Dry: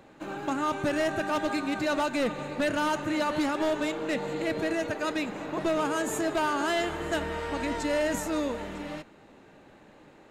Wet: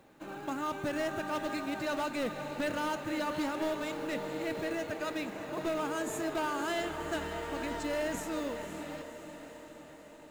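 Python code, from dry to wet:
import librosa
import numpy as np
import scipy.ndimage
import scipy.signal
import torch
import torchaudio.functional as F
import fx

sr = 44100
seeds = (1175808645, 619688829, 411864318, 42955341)

y = fx.quant_companded(x, sr, bits=6)
y = fx.echo_diffused(y, sr, ms=535, feedback_pct=61, wet_db=-10.0)
y = y * 10.0 ** (-6.5 / 20.0)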